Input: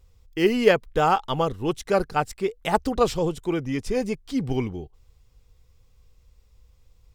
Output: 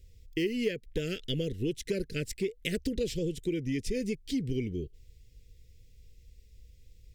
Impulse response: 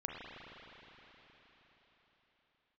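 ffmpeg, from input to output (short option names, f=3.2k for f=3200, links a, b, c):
-af "asuperstop=centerf=950:order=8:qfactor=0.69,acompressor=threshold=-30dB:ratio=5,volume=1.5dB"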